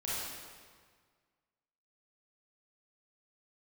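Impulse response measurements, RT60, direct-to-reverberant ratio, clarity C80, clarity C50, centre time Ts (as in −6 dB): 1.7 s, −9.0 dB, −0.5 dB, −4.0 dB, 127 ms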